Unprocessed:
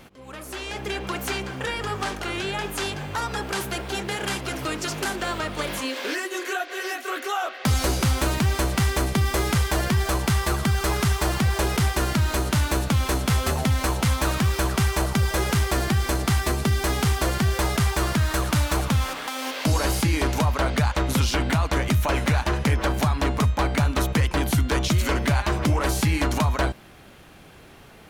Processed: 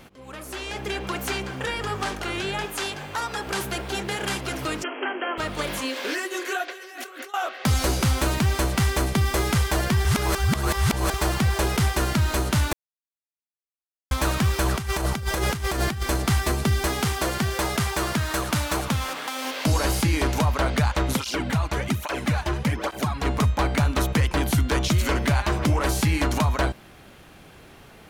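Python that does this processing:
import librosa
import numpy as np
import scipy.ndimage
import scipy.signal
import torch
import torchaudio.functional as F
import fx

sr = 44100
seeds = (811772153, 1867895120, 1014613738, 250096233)

y = fx.low_shelf(x, sr, hz=250.0, db=-9.0, at=(2.65, 3.47))
y = fx.brickwall_bandpass(y, sr, low_hz=230.0, high_hz=3300.0, at=(4.82, 5.37), fade=0.02)
y = fx.over_compress(y, sr, threshold_db=-40.0, ratio=-1.0, at=(6.68, 7.34))
y = fx.over_compress(y, sr, threshold_db=-24.0, ratio=-0.5, at=(14.66, 16.03))
y = fx.low_shelf(y, sr, hz=83.0, db=-11.5, at=(16.88, 19.45))
y = fx.flanger_cancel(y, sr, hz=1.2, depth_ms=4.5, at=(21.16, 23.24), fade=0.02)
y = fx.edit(y, sr, fx.reverse_span(start_s=10.05, length_s=1.09),
    fx.silence(start_s=12.73, length_s=1.38), tone=tone)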